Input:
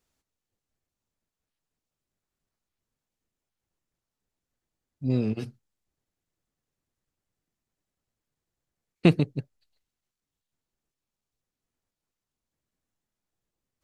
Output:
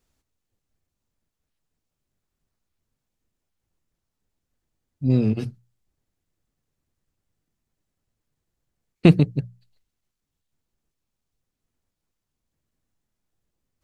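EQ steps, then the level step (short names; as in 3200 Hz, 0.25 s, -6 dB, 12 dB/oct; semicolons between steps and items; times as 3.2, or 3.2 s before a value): low shelf 200 Hz +8 dB; notches 60/120/180 Hz; +2.5 dB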